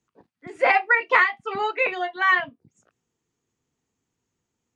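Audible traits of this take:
background noise floor −81 dBFS
spectral slope +1.5 dB per octave

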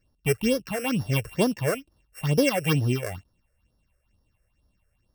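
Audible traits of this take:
a buzz of ramps at a fixed pitch in blocks of 16 samples
phaser sweep stages 6, 2.2 Hz, lowest notch 230–2,500 Hz

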